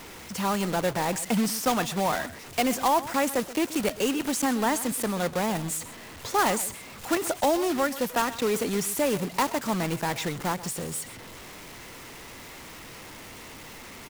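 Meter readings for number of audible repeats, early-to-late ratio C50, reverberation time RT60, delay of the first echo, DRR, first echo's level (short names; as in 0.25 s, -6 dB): 1, none, none, 0.129 s, none, -16.0 dB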